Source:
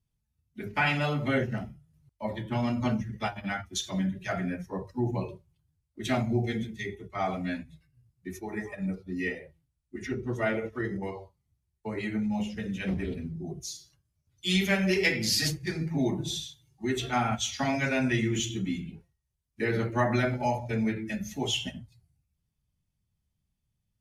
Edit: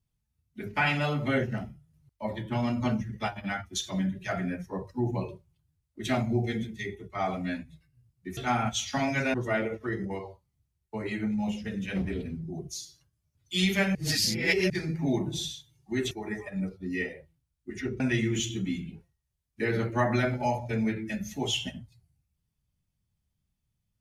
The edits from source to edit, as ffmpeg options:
-filter_complex "[0:a]asplit=7[a][b][c][d][e][f][g];[a]atrim=end=8.372[h];[b]atrim=start=17.028:end=18.002[i];[c]atrim=start=10.258:end=14.872[j];[d]atrim=start=14.868:end=15.622,asetpts=PTS-STARTPTS,areverse[k];[e]atrim=start=15.618:end=17.032[l];[f]atrim=start=8.368:end=10.262[m];[g]atrim=start=17.998[n];[h][i]acrossfade=d=0.004:c1=hsin:c2=hsin[o];[o][j]acrossfade=d=0.004:c1=hsin:c2=hsin[p];[p][k]acrossfade=d=0.004:c1=hsin:c2=hsin[q];[q][l]acrossfade=d=0.004:c1=hsin:c2=hsin[r];[r][m]acrossfade=d=0.004:c1=hsin:c2=hsin[s];[s][n]acrossfade=d=0.004:c1=hsin:c2=hsin"

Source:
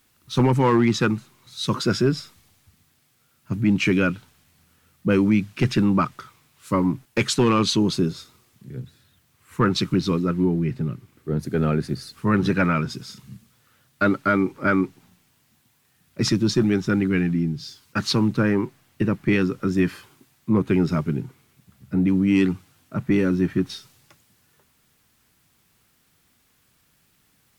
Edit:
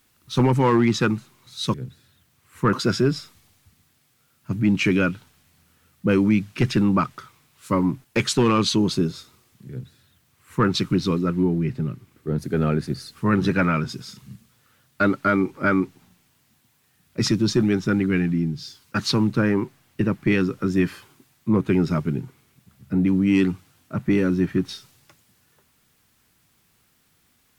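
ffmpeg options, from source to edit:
-filter_complex "[0:a]asplit=3[a][b][c];[a]atrim=end=1.742[d];[b]atrim=start=8.698:end=9.692[e];[c]atrim=start=1.738[f];[d][e]acrossfade=d=0.004:c1=hsin:c2=hsin[g];[g][f]acrossfade=d=0.004:c1=hsin:c2=hsin"

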